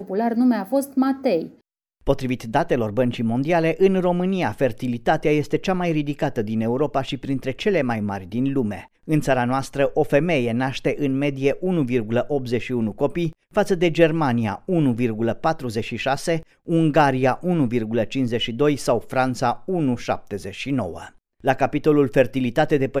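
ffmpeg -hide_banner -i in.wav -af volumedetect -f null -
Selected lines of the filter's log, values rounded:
mean_volume: -21.2 dB
max_volume: -3.1 dB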